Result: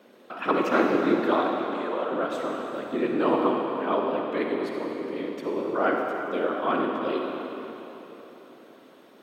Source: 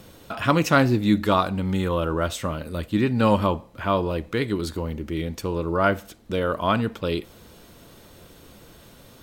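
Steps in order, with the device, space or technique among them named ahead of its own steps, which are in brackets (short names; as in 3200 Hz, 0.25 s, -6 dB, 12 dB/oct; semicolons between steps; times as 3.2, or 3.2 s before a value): 1.35–2.12 Chebyshev band-pass 530–8100 Hz, order 2; tone controls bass +15 dB, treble -14 dB; whispering ghost (whisperiser; HPF 330 Hz 24 dB/oct; reverb RT60 3.7 s, pre-delay 42 ms, DRR 0.5 dB); gain -5 dB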